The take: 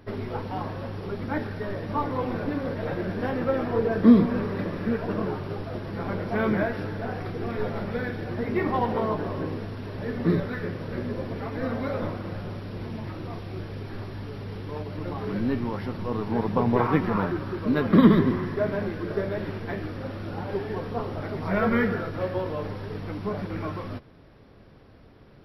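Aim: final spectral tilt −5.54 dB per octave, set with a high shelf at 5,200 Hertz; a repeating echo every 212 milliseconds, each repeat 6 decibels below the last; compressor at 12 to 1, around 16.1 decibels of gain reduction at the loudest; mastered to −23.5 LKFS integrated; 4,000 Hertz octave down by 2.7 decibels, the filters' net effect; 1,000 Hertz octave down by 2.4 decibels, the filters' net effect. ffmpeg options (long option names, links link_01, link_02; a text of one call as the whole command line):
ffmpeg -i in.wav -af "equalizer=frequency=1000:width_type=o:gain=-3,equalizer=frequency=4000:width_type=o:gain=-6,highshelf=frequency=5200:gain=6.5,acompressor=threshold=-26dB:ratio=12,aecho=1:1:212|424|636|848|1060|1272:0.501|0.251|0.125|0.0626|0.0313|0.0157,volume=8dB" out.wav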